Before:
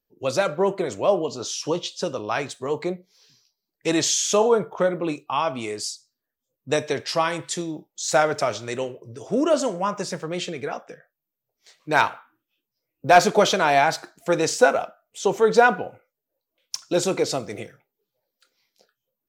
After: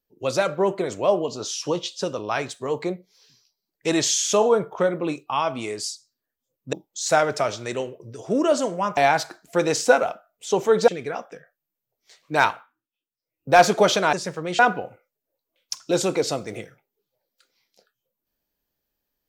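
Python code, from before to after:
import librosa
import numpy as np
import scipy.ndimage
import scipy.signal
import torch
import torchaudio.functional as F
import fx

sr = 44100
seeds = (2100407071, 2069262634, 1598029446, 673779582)

y = fx.edit(x, sr, fx.cut(start_s=6.73, length_s=1.02),
    fx.swap(start_s=9.99, length_s=0.46, other_s=13.7, other_length_s=1.91),
    fx.fade_down_up(start_s=12.01, length_s=1.08, db=-13.0, fade_s=0.31), tone=tone)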